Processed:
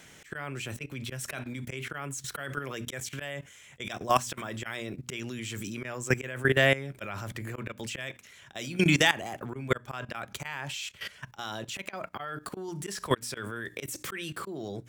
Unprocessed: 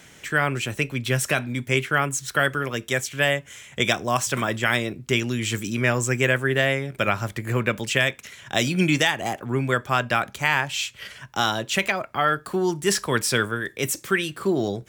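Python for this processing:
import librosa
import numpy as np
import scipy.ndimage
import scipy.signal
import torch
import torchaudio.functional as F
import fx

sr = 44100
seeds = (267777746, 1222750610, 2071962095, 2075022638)

p1 = fx.hum_notches(x, sr, base_hz=60, count=5)
p2 = fx.rider(p1, sr, range_db=5, speed_s=0.5)
p3 = p1 + F.gain(torch.from_numpy(p2), 2.0).numpy()
p4 = fx.auto_swell(p3, sr, attack_ms=187.0)
p5 = fx.level_steps(p4, sr, step_db=16)
y = F.gain(torch.from_numpy(p5), -5.0).numpy()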